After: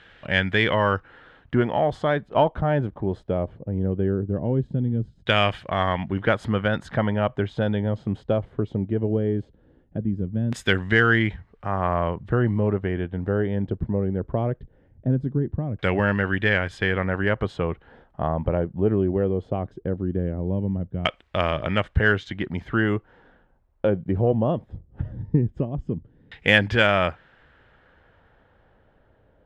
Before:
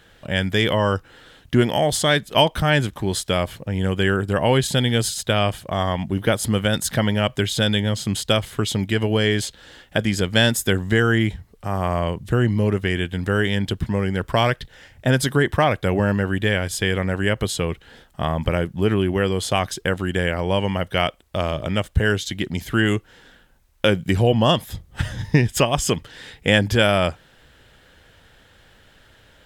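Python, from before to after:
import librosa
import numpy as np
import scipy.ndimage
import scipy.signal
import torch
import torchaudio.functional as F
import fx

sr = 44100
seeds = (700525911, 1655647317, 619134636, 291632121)

p1 = fx.filter_lfo_lowpass(x, sr, shape='saw_down', hz=0.19, low_hz=220.0, high_hz=2500.0, q=1.0)
p2 = fx.rider(p1, sr, range_db=10, speed_s=2.0)
p3 = p1 + (p2 * 10.0 ** (-2.5 / 20.0))
p4 = fx.tilt_shelf(p3, sr, db=-4.5, hz=1300.0)
p5 = fx.cheby_harmonics(p4, sr, harmonics=(6,), levels_db=(-34,), full_scale_db=3.0)
y = p5 * 10.0 ** (-4.0 / 20.0)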